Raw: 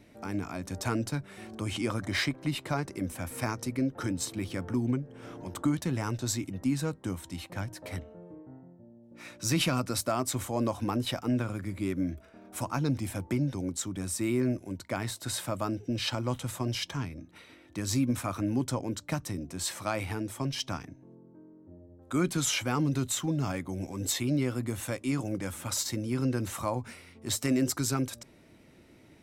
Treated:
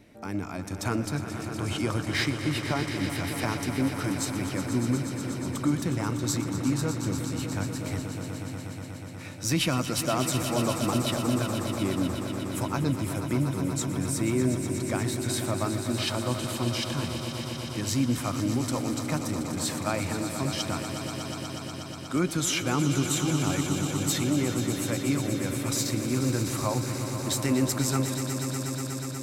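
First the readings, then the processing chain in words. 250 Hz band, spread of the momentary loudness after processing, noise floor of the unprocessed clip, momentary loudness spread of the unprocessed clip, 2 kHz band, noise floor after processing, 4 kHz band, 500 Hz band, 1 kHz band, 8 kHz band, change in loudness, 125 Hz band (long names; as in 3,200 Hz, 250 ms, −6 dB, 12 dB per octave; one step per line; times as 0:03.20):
+3.5 dB, 8 LU, −57 dBFS, 11 LU, +4.0 dB, −37 dBFS, +4.0 dB, +4.0 dB, +4.0 dB, +4.0 dB, +3.5 dB, +4.5 dB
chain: echo that builds up and dies away 121 ms, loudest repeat 5, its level −11 dB
level +1.5 dB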